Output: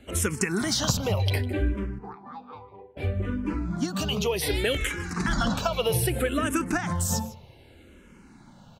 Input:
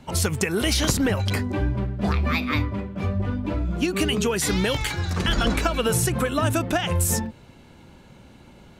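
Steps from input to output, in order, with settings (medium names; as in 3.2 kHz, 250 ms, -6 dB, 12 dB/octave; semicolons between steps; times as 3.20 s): 1.98–2.97 s: two resonant band-passes 610 Hz, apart 0.83 oct; on a send: delay 154 ms -18 dB; on the sum: barber-pole phaser -0.64 Hz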